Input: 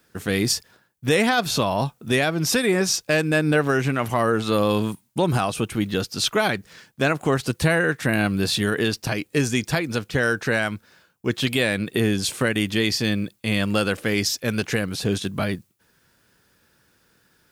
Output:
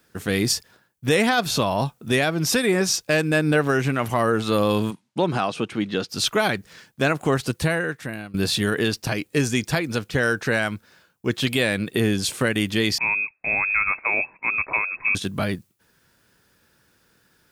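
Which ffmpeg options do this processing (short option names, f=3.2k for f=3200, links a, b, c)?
-filter_complex "[0:a]asplit=3[a][b][c];[a]afade=t=out:st=4.9:d=0.02[d];[b]highpass=170,lowpass=5k,afade=t=in:st=4.9:d=0.02,afade=t=out:st=6.08:d=0.02[e];[c]afade=t=in:st=6.08:d=0.02[f];[d][e][f]amix=inputs=3:normalize=0,asettb=1/sr,asplit=3[g][h][i];[g]atrim=end=12.984[j];[h]atrim=start=12.98:end=15.15,asetpts=PTS-STARTPTS,afade=t=in:d=0.004:c=qsin,afade=t=out:st=2.166:d=0.004:c=qsin,lowpass=f=2.3k:t=q:w=0.5098,lowpass=f=2.3k:t=q:w=0.6013,lowpass=f=2.3k:t=q:w=0.9,lowpass=f=2.3k:t=q:w=2.563,afreqshift=-2700[k];[i]atrim=start=15.146[l];[j][k]acrossfade=d=0.004:c1=hsin:c2=qsin[m];[m][l]acrossfade=d=0.004:c1=qsin:c2=hsin,asplit=2[n][o];[n]atrim=end=8.34,asetpts=PTS-STARTPTS,afade=t=out:st=7.42:d=0.92:silence=0.0794328[p];[o]atrim=start=8.34,asetpts=PTS-STARTPTS,afade=t=in:d=0.004:c=hsin:silence=0.0794328[q];[p][q]concat=n=2:v=0:a=1"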